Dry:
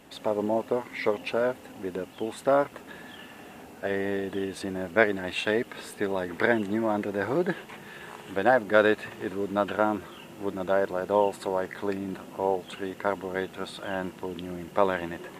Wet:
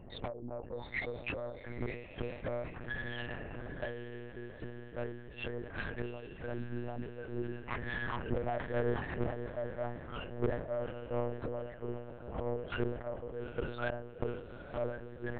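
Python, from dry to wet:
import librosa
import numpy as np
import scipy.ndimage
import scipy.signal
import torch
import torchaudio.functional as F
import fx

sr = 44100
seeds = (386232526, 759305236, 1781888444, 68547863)

y = fx.spec_expand(x, sr, power=1.6)
y = fx.noise_reduce_blind(y, sr, reduce_db=14)
y = scipy.signal.sosfilt(scipy.signal.bessel(2, 1100.0, 'lowpass', norm='mag', fs=sr, output='sos'), y)
y = fx.gate_flip(y, sr, shuts_db=-33.0, range_db=-29)
y = fx.tube_stage(y, sr, drive_db=48.0, bias=0.45)
y = fx.echo_diffused(y, sr, ms=842, feedback_pct=55, wet_db=-11.5)
y = fx.filter_sweep_highpass(y, sr, from_hz=110.0, to_hz=400.0, start_s=5.74, end_s=8.86, q=2.1)
y = fx.lpc_monotone(y, sr, seeds[0], pitch_hz=120.0, order=8)
y = fx.sustainer(y, sr, db_per_s=77.0)
y = y * 10.0 ** (16.5 / 20.0)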